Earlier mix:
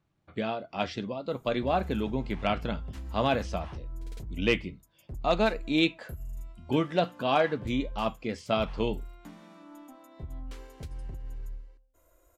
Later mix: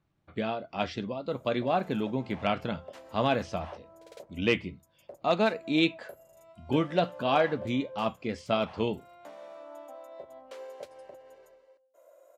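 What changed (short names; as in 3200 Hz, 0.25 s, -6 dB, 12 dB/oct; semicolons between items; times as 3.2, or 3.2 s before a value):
background: add resonant high-pass 570 Hz, resonance Q 7.1; master: add high shelf 8200 Hz -6 dB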